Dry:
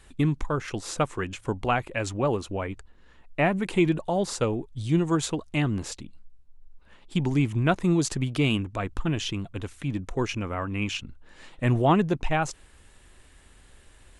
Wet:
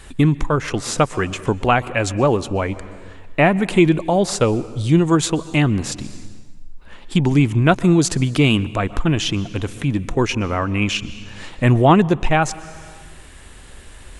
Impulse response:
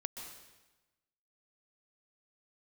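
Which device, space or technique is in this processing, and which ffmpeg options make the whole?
compressed reverb return: -filter_complex "[0:a]asplit=2[a][b];[1:a]atrim=start_sample=2205[c];[b][c]afir=irnorm=-1:irlink=0,acompressor=threshold=-39dB:ratio=5,volume=0.5dB[d];[a][d]amix=inputs=2:normalize=0,volume=7.5dB"

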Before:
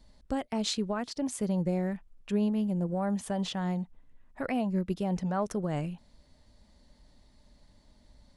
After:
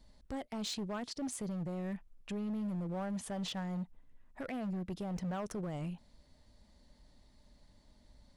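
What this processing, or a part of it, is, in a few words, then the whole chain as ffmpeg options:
limiter into clipper: -af "alimiter=level_in=2.5dB:limit=-24dB:level=0:latency=1:release=21,volume=-2.5dB,asoftclip=type=hard:threshold=-31dB,volume=-3dB"

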